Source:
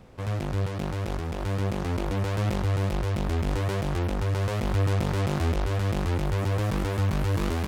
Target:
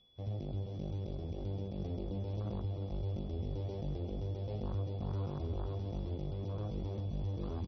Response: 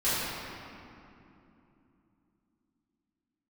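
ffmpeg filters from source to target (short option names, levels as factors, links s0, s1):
-filter_complex "[0:a]aemphasis=mode=production:type=75fm,afwtdn=0.0355,equalizer=f=1600:t=o:w=0.81:g=-10.5,acompressor=threshold=0.0447:ratio=8,aeval=exprs='val(0)+0.00126*sin(2*PI*3400*n/s)':c=same,aecho=1:1:353|706|1059|1412|1765|2118:0.266|0.146|0.0805|0.0443|0.0243|0.0134,asplit=2[s0][s1];[1:a]atrim=start_sample=2205,highshelf=f=3100:g=-5[s2];[s1][s2]afir=irnorm=-1:irlink=0,volume=0.0335[s3];[s0][s3]amix=inputs=2:normalize=0,volume=0.422" -ar 24000 -c:a libmp3lame -b:a 24k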